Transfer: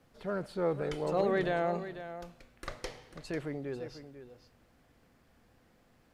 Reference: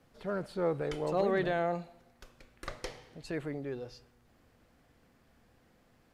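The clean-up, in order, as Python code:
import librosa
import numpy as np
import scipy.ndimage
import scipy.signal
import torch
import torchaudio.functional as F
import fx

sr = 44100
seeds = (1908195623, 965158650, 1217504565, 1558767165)

y = fx.fix_echo_inverse(x, sr, delay_ms=495, level_db=-12.0)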